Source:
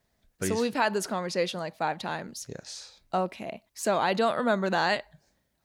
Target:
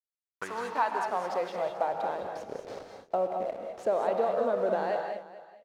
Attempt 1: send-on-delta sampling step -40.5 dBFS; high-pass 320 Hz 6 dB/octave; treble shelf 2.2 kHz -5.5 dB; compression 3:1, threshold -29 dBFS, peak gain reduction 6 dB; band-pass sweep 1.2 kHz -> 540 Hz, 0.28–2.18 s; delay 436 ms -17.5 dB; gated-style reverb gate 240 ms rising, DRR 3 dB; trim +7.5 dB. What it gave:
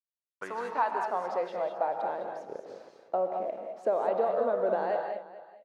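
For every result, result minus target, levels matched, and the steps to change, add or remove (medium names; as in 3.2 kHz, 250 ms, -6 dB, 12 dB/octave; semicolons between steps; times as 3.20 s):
4 kHz band -6.5 dB; send-on-delta sampling: distortion -8 dB; 250 Hz band -2.0 dB
change: treble shelf 2.2 kHz +6 dB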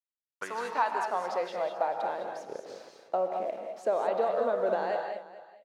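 send-on-delta sampling: distortion -8 dB; 250 Hz band -3.0 dB
change: send-on-delta sampling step -33.5 dBFS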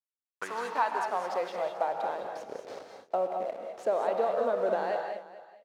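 250 Hz band -3.0 dB
remove: high-pass 320 Hz 6 dB/octave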